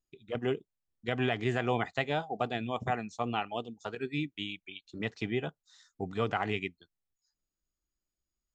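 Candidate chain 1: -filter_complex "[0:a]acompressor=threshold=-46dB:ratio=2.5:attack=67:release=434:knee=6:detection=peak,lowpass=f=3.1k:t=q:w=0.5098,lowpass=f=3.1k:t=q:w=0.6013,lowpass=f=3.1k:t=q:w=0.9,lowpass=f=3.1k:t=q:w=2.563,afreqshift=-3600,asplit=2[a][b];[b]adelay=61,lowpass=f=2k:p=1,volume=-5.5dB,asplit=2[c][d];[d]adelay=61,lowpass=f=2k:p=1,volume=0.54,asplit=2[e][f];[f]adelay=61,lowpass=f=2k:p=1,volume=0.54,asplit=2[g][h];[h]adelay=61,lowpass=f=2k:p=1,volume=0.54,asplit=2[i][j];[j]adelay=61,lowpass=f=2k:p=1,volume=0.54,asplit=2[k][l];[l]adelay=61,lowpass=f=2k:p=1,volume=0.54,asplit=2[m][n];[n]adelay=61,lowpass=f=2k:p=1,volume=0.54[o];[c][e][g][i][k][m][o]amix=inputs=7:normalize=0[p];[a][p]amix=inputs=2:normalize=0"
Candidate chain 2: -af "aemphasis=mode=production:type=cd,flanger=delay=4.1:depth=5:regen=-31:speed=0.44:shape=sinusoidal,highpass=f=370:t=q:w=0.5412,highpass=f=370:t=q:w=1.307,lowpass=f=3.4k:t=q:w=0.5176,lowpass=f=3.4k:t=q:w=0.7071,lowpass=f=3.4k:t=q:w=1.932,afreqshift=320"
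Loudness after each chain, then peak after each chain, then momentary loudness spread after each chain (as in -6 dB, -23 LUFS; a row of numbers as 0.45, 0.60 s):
-40.0, -39.0 LUFS; -24.5, -19.5 dBFS; 7, 11 LU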